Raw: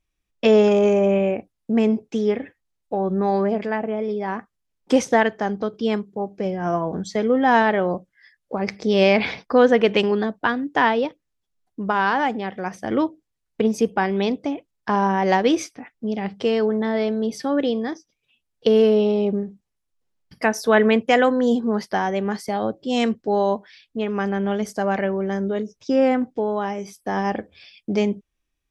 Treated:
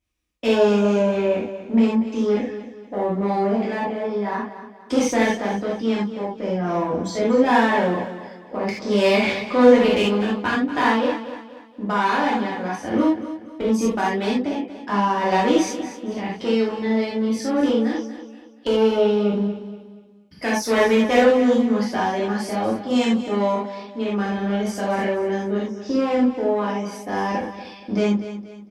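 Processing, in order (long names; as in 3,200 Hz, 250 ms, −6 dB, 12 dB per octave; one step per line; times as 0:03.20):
one-sided soft clipper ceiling −19 dBFS
in parallel at −7 dB: gain into a clipping stage and back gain 21 dB
on the sum: high-pass filter 46 Hz
repeating echo 238 ms, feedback 38%, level −12.5 dB
reverb whose tail is shaped and stops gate 110 ms flat, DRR −6.5 dB
level −8 dB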